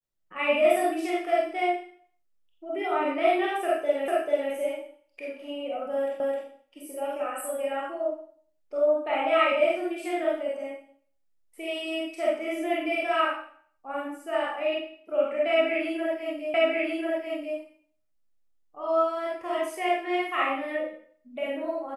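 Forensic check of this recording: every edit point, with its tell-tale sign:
4.08 repeat of the last 0.44 s
6.2 repeat of the last 0.26 s
16.54 repeat of the last 1.04 s

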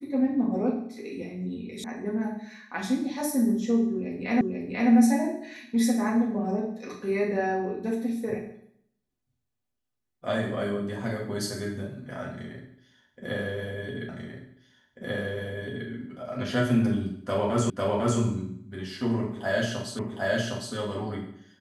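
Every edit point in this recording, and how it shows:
1.84 sound cut off
4.41 repeat of the last 0.49 s
14.09 repeat of the last 1.79 s
17.7 repeat of the last 0.5 s
19.99 repeat of the last 0.76 s

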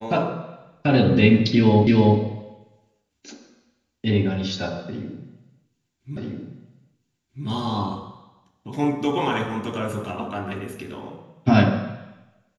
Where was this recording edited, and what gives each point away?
1.87 repeat of the last 0.32 s
6.17 repeat of the last 1.29 s

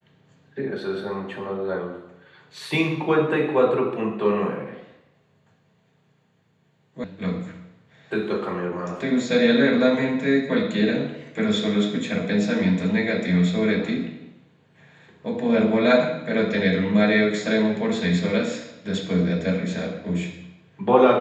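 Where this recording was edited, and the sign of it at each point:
7.04 sound cut off

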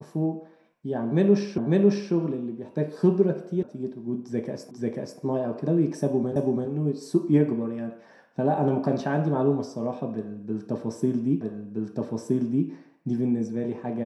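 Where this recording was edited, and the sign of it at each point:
1.58 repeat of the last 0.55 s
3.63 sound cut off
4.71 repeat of the last 0.49 s
6.36 repeat of the last 0.33 s
11.41 repeat of the last 1.27 s

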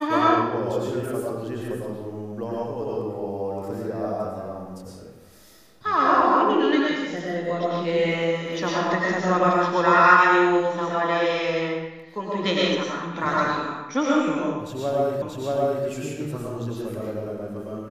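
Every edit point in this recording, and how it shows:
15.22 repeat of the last 0.63 s

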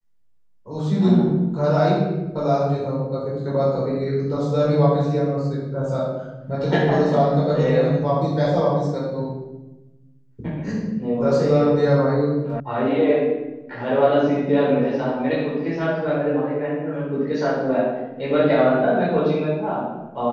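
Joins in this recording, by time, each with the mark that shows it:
12.6 sound cut off

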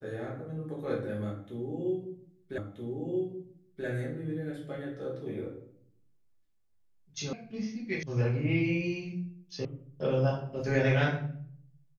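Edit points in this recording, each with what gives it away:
2.58 repeat of the last 1.28 s
7.33 sound cut off
8.03 sound cut off
9.65 sound cut off

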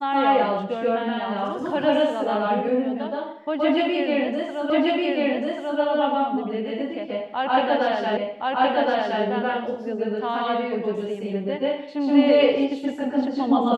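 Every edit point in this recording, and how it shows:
4.7 repeat of the last 1.09 s
8.17 repeat of the last 1.07 s

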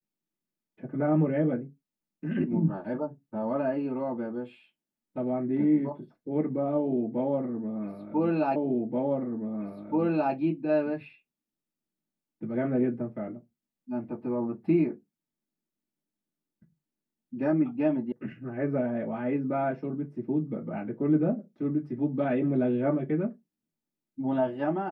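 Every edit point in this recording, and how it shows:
8.56 repeat of the last 1.78 s
18.12 sound cut off

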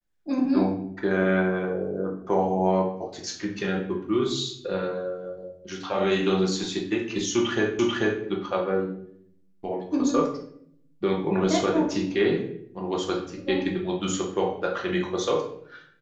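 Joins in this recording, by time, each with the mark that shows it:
7.79 repeat of the last 0.44 s

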